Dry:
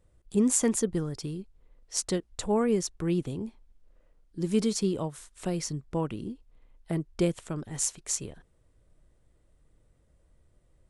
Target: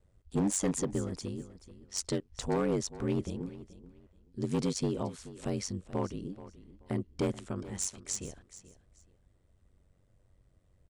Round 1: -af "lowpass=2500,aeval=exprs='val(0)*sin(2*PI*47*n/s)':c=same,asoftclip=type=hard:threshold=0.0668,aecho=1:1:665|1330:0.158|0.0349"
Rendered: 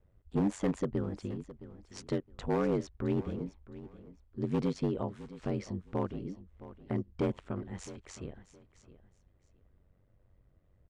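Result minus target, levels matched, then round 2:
8 kHz band -16.0 dB; echo 235 ms late
-af "lowpass=8200,aeval=exprs='val(0)*sin(2*PI*47*n/s)':c=same,asoftclip=type=hard:threshold=0.0668,aecho=1:1:430|860:0.158|0.0349"

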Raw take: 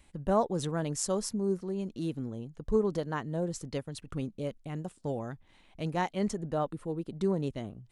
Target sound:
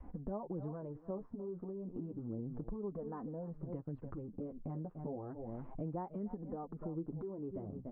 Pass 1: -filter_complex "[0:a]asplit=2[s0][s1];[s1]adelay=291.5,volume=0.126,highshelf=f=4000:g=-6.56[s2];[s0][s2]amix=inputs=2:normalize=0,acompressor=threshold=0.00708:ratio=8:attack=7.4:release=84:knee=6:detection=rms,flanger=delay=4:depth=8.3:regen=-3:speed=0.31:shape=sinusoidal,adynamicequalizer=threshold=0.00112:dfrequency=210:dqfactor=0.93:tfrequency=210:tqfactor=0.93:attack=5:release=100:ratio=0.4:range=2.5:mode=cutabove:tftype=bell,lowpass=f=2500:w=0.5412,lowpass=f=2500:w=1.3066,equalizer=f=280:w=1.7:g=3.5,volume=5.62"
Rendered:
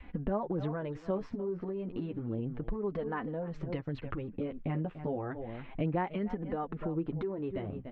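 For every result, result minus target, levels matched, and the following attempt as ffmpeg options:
2 kHz band +15.5 dB; compression: peak gain reduction -9 dB
-filter_complex "[0:a]asplit=2[s0][s1];[s1]adelay=291.5,volume=0.126,highshelf=f=4000:g=-6.56[s2];[s0][s2]amix=inputs=2:normalize=0,acompressor=threshold=0.00708:ratio=8:attack=7.4:release=84:knee=6:detection=rms,flanger=delay=4:depth=8.3:regen=-3:speed=0.31:shape=sinusoidal,adynamicequalizer=threshold=0.00112:dfrequency=210:dqfactor=0.93:tfrequency=210:tqfactor=0.93:attack=5:release=100:ratio=0.4:range=2.5:mode=cutabove:tftype=bell,lowpass=f=1100:w=0.5412,lowpass=f=1100:w=1.3066,equalizer=f=280:w=1.7:g=3.5,volume=5.62"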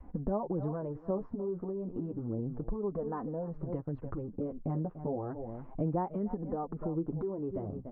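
compression: peak gain reduction -9 dB
-filter_complex "[0:a]asplit=2[s0][s1];[s1]adelay=291.5,volume=0.126,highshelf=f=4000:g=-6.56[s2];[s0][s2]amix=inputs=2:normalize=0,acompressor=threshold=0.00211:ratio=8:attack=7.4:release=84:knee=6:detection=rms,flanger=delay=4:depth=8.3:regen=-3:speed=0.31:shape=sinusoidal,adynamicequalizer=threshold=0.00112:dfrequency=210:dqfactor=0.93:tfrequency=210:tqfactor=0.93:attack=5:release=100:ratio=0.4:range=2.5:mode=cutabove:tftype=bell,lowpass=f=1100:w=0.5412,lowpass=f=1100:w=1.3066,equalizer=f=280:w=1.7:g=3.5,volume=5.62"

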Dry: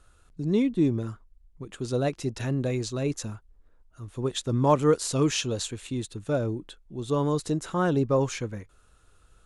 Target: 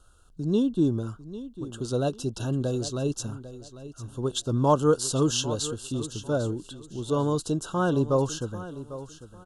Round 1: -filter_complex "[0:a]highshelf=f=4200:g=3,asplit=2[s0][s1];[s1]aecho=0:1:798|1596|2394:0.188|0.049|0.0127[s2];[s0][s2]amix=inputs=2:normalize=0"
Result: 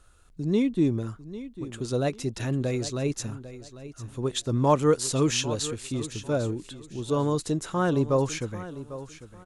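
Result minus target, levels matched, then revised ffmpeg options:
2 kHz band +3.5 dB
-filter_complex "[0:a]asuperstop=centerf=2100:order=20:qfactor=2,highshelf=f=4200:g=3,asplit=2[s0][s1];[s1]aecho=0:1:798|1596|2394:0.188|0.049|0.0127[s2];[s0][s2]amix=inputs=2:normalize=0"

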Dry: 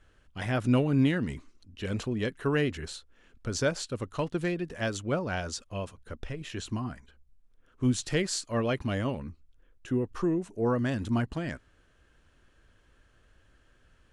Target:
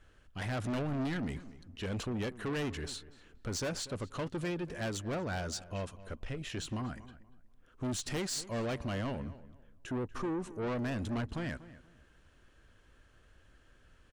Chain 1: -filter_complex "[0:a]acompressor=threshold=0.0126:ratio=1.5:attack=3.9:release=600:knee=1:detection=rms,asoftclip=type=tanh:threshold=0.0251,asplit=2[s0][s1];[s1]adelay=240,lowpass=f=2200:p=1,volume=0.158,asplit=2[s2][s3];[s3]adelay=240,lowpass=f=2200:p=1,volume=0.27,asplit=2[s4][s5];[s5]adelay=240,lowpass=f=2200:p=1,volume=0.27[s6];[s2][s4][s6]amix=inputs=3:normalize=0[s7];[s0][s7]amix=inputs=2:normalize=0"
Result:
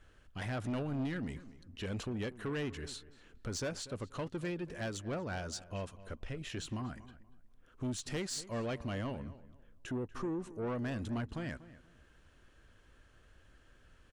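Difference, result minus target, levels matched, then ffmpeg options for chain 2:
compression: peak gain reduction +7.5 dB
-filter_complex "[0:a]asoftclip=type=tanh:threshold=0.0251,asplit=2[s0][s1];[s1]adelay=240,lowpass=f=2200:p=1,volume=0.158,asplit=2[s2][s3];[s3]adelay=240,lowpass=f=2200:p=1,volume=0.27,asplit=2[s4][s5];[s5]adelay=240,lowpass=f=2200:p=1,volume=0.27[s6];[s2][s4][s6]amix=inputs=3:normalize=0[s7];[s0][s7]amix=inputs=2:normalize=0"

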